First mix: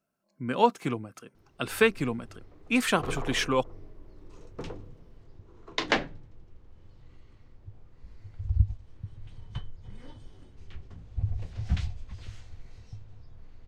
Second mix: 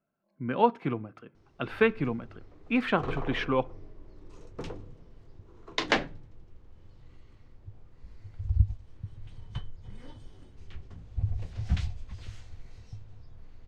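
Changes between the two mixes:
speech: add distance through air 370 m; reverb: on, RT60 0.40 s

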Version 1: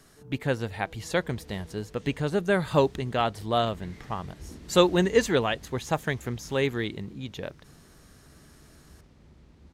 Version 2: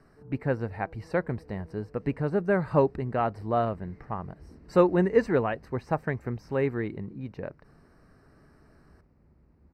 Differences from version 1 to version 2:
second sound -6.5 dB; master: add boxcar filter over 13 samples

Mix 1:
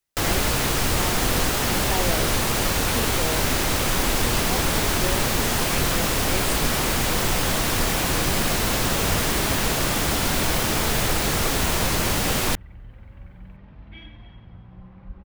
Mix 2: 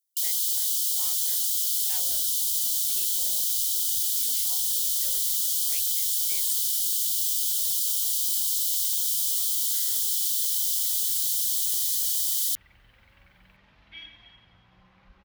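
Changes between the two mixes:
first sound: add brick-wall FIR high-pass 2.9 kHz; second sound +11.5 dB; master: add pre-emphasis filter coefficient 0.97

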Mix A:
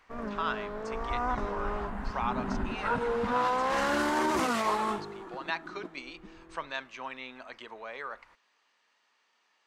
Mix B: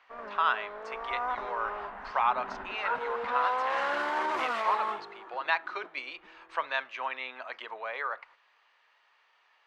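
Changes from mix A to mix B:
speech +6.5 dB; master: add three-band isolator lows -21 dB, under 460 Hz, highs -18 dB, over 3.8 kHz

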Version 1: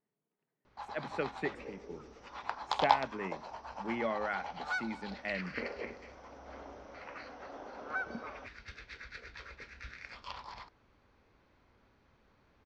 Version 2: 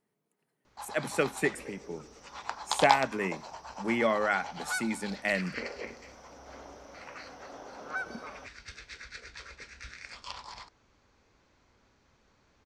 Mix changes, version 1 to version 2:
speech +7.0 dB; second sound: remove high-pass 190 Hz 24 dB/octave; master: remove distance through air 190 m

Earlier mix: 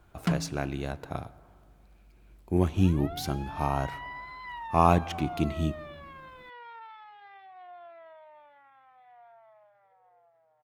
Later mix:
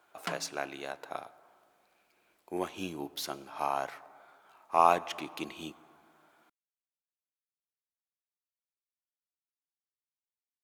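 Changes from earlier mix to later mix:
second sound: muted; master: add high-pass 540 Hz 12 dB/octave

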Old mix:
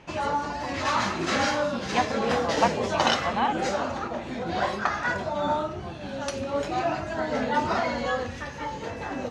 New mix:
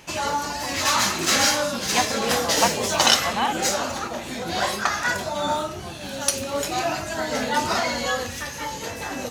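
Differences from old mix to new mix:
background: remove distance through air 93 m; master: add treble shelf 2.5 kHz +10.5 dB

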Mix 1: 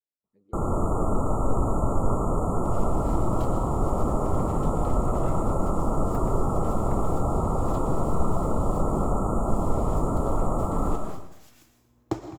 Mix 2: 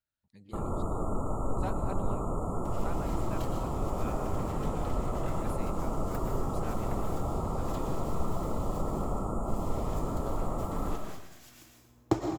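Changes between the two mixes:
speech: remove band-pass filter 420 Hz, Q 2.3; first sound -7.5 dB; second sound: send +7.5 dB

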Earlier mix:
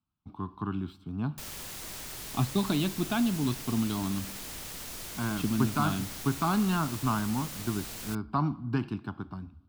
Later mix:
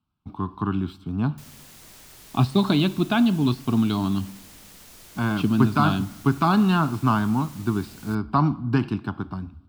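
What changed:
speech +8.0 dB; background -6.5 dB

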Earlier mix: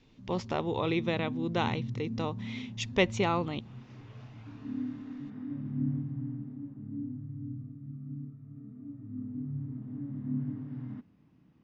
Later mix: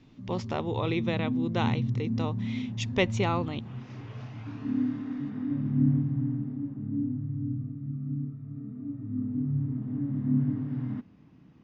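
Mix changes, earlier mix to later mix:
background +9.5 dB; reverb: off

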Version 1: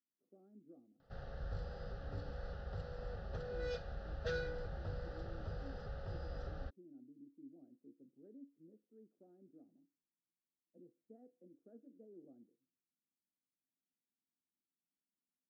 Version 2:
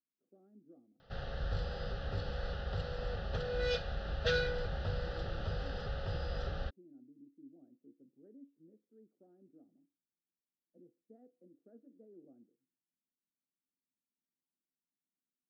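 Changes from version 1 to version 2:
background +6.5 dB; master: add peaking EQ 3.1 kHz +10 dB 1.2 oct

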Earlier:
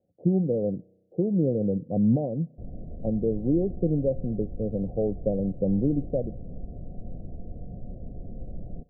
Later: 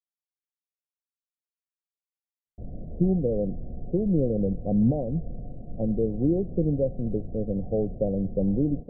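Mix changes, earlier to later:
speech: entry +2.75 s; background: send +10.0 dB

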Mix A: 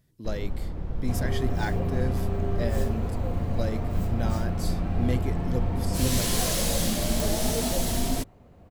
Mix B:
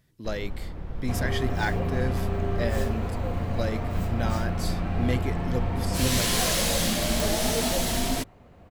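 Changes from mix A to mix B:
first sound -3.5 dB; master: add peaking EQ 2 kHz +6 dB 2.7 oct

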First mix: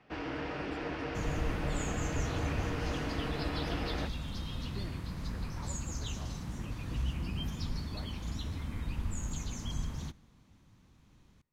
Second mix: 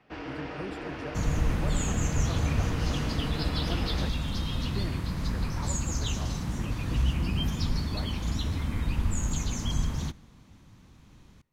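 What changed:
speech +8.0 dB; second sound +8.0 dB

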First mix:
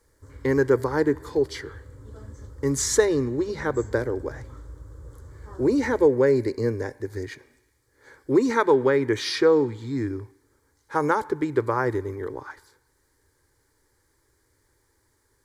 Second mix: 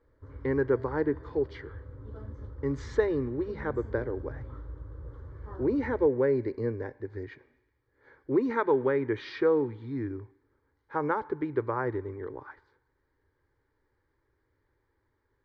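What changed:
speech -6.0 dB; master: add Bessel low-pass 2.3 kHz, order 4

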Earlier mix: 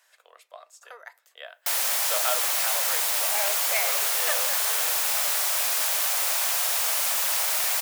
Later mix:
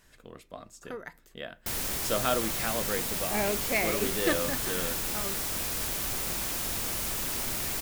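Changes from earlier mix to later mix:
background -8.0 dB; master: remove steep high-pass 580 Hz 36 dB/octave

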